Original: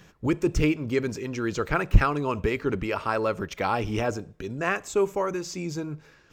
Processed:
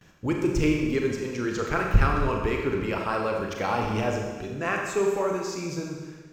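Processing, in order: gate with hold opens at -44 dBFS; Schroeder reverb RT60 1.4 s, combs from 29 ms, DRR 0.5 dB; trim -2.5 dB

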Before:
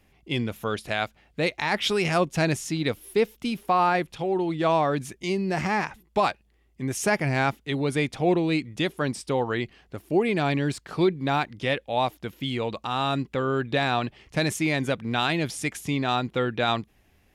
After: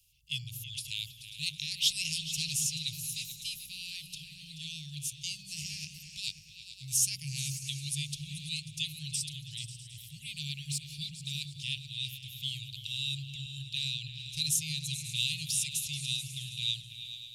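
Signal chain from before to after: Chebyshev band-stop 150–2700 Hz, order 5; tone controls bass -7 dB, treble +12 dB; on a send: delay with an opening low-pass 108 ms, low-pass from 200 Hz, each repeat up 2 oct, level -3 dB; on the sum: trim -4.5 dB

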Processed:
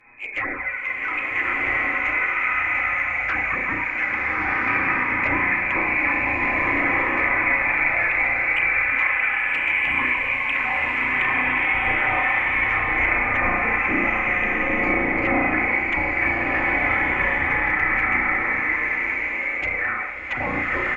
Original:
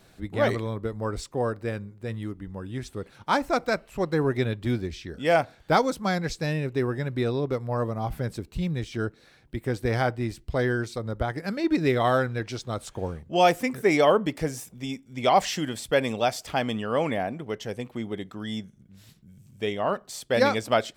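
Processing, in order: single-diode clipper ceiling -23.5 dBFS; peaking EQ 200 Hz -9.5 dB 0.58 oct; comb 4.1 ms, depth 51%; on a send: flutter echo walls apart 5.8 m, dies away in 0.67 s; on the sum: frequency inversion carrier 2.5 kHz; touch-sensitive flanger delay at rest 8.9 ms, full sweep at -18.5 dBFS; low-pass that closes with the level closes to 1.2 kHz, closed at -23.5 dBFS; peak limiter -23.5 dBFS, peak gain reduction 7.5 dB; swelling reverb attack 1410 ms, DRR -5.5 dB; trim +7 dB

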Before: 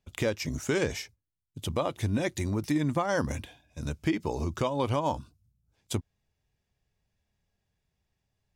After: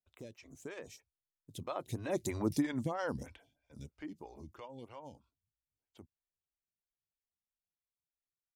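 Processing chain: Doppler pass-by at 2.41 s, 18 m/s, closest 4.7 m; lamp-driven phase shifter 3.1 Hz; trim +1 dB

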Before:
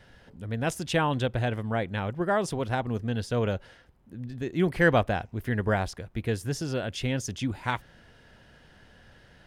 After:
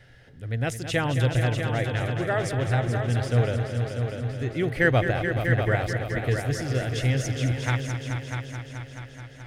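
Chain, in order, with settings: graphic EQ with 31 bands 125 Hz +10 dB, 200 Hz -11 dB, 1 kHz -10 dB, 2 kHz +6 dB; multi-head delay 215 ms, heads all three, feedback 58%, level -10 dB

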